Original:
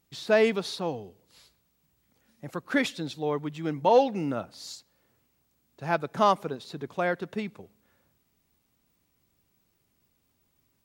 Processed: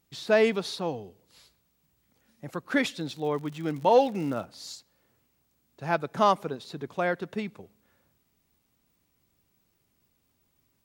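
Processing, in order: 2.95–4.44 s: crackle 71 per s -> 270 per s -38 dBFS

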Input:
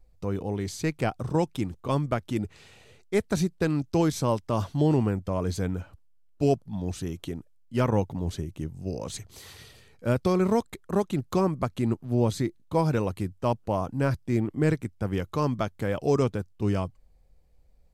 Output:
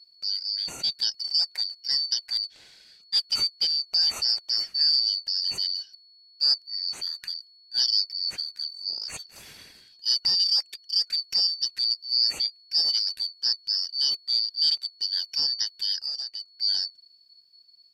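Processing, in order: four frequency bands reordered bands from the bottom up 4321; 16.02–16.54 s: compression 6:1, threshold -30 dBFS, peak gain reduction 11.5 dB

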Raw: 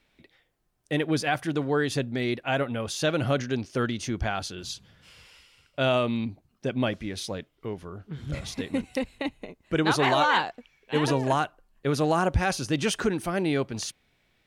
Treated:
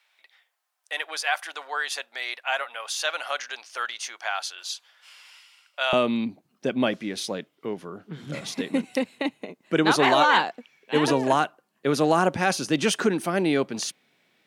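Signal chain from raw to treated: high-pass 780 Hz 24 dB/octave, from 5.93 s 170 Hz; trim +3.5 dB

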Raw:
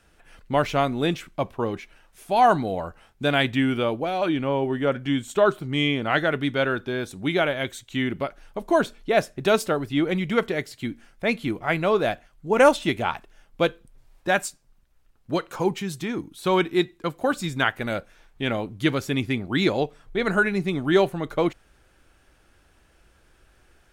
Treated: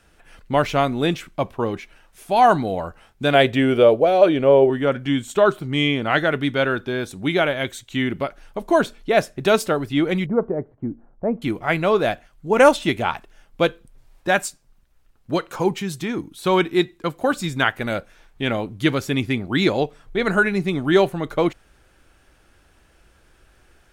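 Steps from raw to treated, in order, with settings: 3.34–4.70 s: high-order bell 510 Hz +10 dB 1 oct; 10.26–11.42 s: inverse Chebyshev low-pass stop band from 5.5 kHz, stop band 80 dB; trim +3 dB

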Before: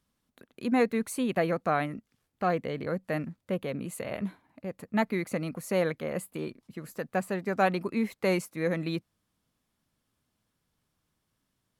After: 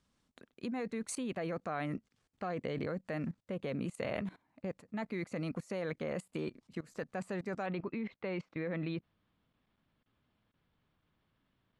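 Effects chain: level held to a coarse grid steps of 20 dB; low-pass 8.7 kHz 24 dB/octave, from 7.66 s 3.6 kHz; trim +3.5 dB

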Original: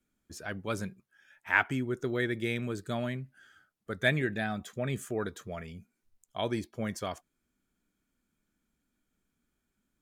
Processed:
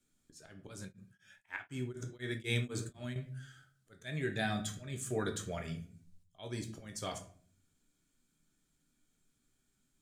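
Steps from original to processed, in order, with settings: graphic EQ 125/4000/8000 Hz +5/+6/+10 dB; slow attack 434 ms; simulated room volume 45 m³, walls mixed, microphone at 0.42 m; 0.81–3.16 s: tremolo of two beating tones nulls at 4 Hz; trim -3 dB

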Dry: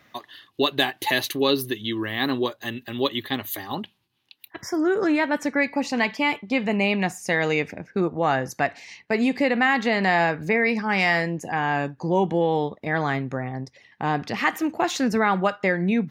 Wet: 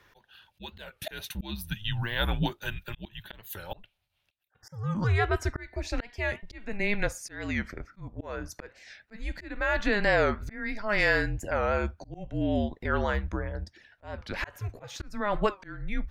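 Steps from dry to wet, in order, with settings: frequency shift -210 Hz; slow attack 441 ms; warped record 45 rpm, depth 160 cents; trim -3 dB

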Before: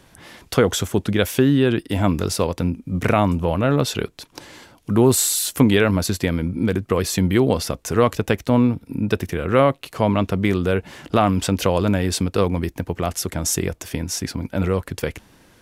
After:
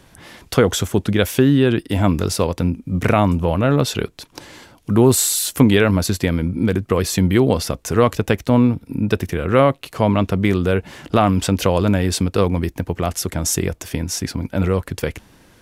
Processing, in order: bass shelf 150 Hz +2.5 dB; trim +1.5 dB

